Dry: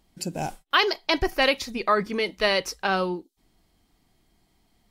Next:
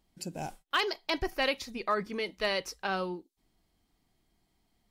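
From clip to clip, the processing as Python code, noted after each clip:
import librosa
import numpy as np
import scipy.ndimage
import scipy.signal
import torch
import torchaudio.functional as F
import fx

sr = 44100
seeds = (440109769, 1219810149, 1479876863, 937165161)

y = np.clip(x, -10.0 ** (-9.5 / 20.0), 10.0 ** (-9.5 / 20.0))
y = F.gain(torch.from_numpy(y), -8.0).numpy()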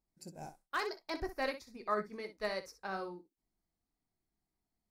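y = fx.peak_eq(x, sr, hz=3000.0, db=-14.5, octaves=0.48)
y = fx.room_early_taps(y, sr, ms=(19, 62), db=(-10.5, -8.5))
y = fx.upward_expand(y, sr, threshold_db=-46.0, expansion=1.5)
y = F.gain(torch.from_numpy(y), -4.5).numpy()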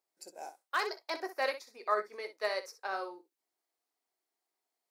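y = scipy.signal.sosfilt(scipy.signal.butter(4, 410.0, 'highpass', fs=sr, output='sos'), x)
y = F.gain(torch.from_numpy(y), 4.0).numpy()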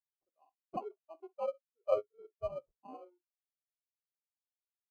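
y = fx.spec_box(x, sr, start_s=0.77, length_s=1.06, low_hz=1600.0, high_hz=12000.0, gain_db=-29)
y = fx.sample_hold(y, sr, seeds[0], rate_hz=1800.0, jitter_pct=0)
y = fx.spectral_expand(y, sr, expansion=2.5)
y = F.gain(torch.from_numpy(y), 1.0).numpy()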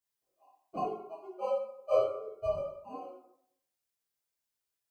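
y = fx.high_shelf(x, sr, hz=3800.0, db=5.5)
y = fx.rev_plate(y, sr, seeds[1], rt60_s=0.71, hf_ratio=0.7, predelay_ms=0, drr_db=-9.5)
y = F.gain(torch.from_numpy(y), -4.0).numpy()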